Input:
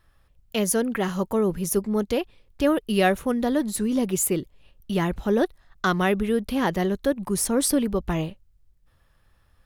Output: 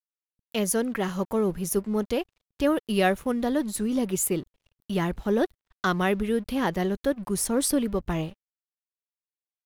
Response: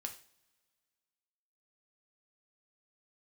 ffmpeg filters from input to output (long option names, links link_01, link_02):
-af "aeval=exprs='sgn(val(0))*max(abs(val(0))-0.00376,0)':channel_layout=same,volume=-2dB"